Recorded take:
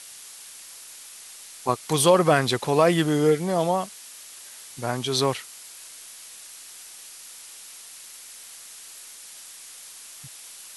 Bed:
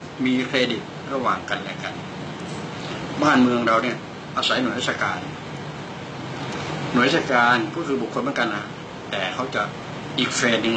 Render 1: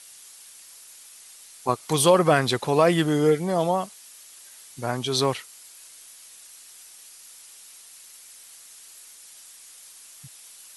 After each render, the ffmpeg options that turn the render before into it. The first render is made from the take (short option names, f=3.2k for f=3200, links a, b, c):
-af "afftdn=nr=6:nf=-44"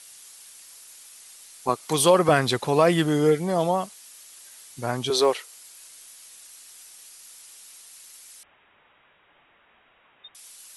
-filter_complex "[0:a]asettb=1/sr,asplit=3[a][b][c];[a]atrim=end=1.694[d];[b]atrim=start=1.69:end=2.29,asetpts=PTS-STARTPTS,afade=t=in:d=0.004:c=qsin,afade=t=out:st=0.596:d=0.004:c=qsin,highpass=160[e];[c]atrim=start=2.286[f];[d][e]acrossfade=d=0.004:c1=hsin:c2=qsin[g];[g][f]acrossfade=d=0.004:c1=qsin:c2=hsin,asettb=1/sr,asplit=3[h][i][j];[h]atrim=end=5.104[k];[i]atrim=start=5.1:end=5.55,asetpts=PTS-STARTPTS,afade=t=in:d=0.004:c=qsin,afade=t=out:st=0.446:d=0.004:c=qsin,highpass=f=420:t=q:w=1.8[l];[j]atrim=start=5.546[m];[k][l]acrossfade=d=0.004:c1=hsin:c2=qsin[n];[n][m]acrossfade=d=0.004:c1=qsin:c2=hsin,asettb=1/sr,asplit=3[o][p][q];[o]atrim=end=8.434[r];[p]atrim=start=8.43:end=10.35,asetpts=PTS-STARTPTS,afade=t=in:d=0.004:c=qsin,afade=t=out:st=1.916:d=0.004:c=qsin,lowpass=f=3.2k:t=q:w=0.5098,lowpass=f=3.2k:t=q:w=0.6013,lowpass=f=3.2k:t=q:w=0.9,lowpass=f=3.2k:t=q:w=2.563,afreqshift=-3800[s];[q]atrim=start=10.346[t];[r][s]acrossfade=d=0.004:c1=hsin:c2=qsin[u];[u][t]acrossfade=d=0.004:c1=qsin:c2=hsin"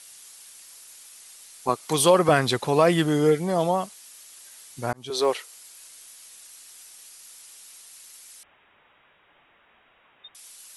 -filter_complex "[0:a]asplit=2[a][b];[a]atrim=end=4.93,asetpts=PTS-STARTPTS,afade=t=out:st=4.926:d=0.004:c=hsin[c];[b]atrim=start=4.93,asetpts=PTS-STARTPTS,afade=t=in:d=0.42[d];[c][d]concat=n=2:v=0:a=1"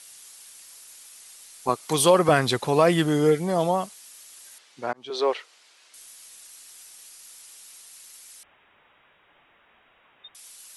-filter_complex "[0:a]asettb=1/sr,asplit=3[a][b][c];[a]atrim=end=4.584[d];[b]atrim=start=4.58:end=5.94,asetpts=PTS-STARTPTS,afade=t=in:d=0.004:c=qsin,afade=t=out:st=1.356:d=0.004:c=qsin,highpass=290,lowpass=3.9k[e];[c]atrim=start=5.936[f];[d][e]acrossfade=d=0.004:c1=hsin:c2=qsin[g];[g][f]acrossfade=d=0.004:c1=qsin:c2=hsin"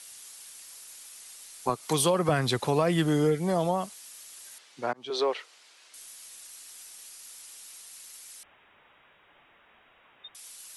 -filter_complex "[0:a]acrossover=split=180[a][b];[b]acompressor=threshold=-24dB:ratio=3[c];[a][c]amix=inputs=2:normalize=0"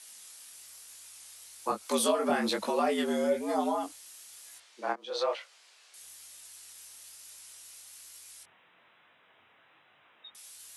-af "flanger=delay=17.5:depth=7.9:speed=1.1,afreqshift=91"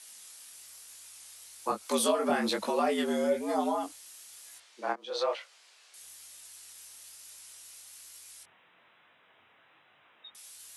-af anull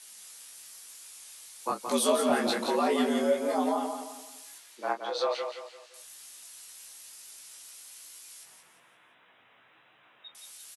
-filter_complex "[0:a]asplit=2[a][b];[b]adelay=16,volume=-7dB[c];[a][c]amix=inputs=2:normalize=0,aecho=1:1:172|344|516|688:0.473|0.175|0.0648|0.024"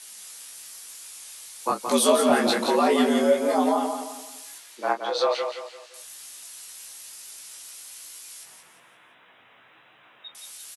-af "volume=6dB"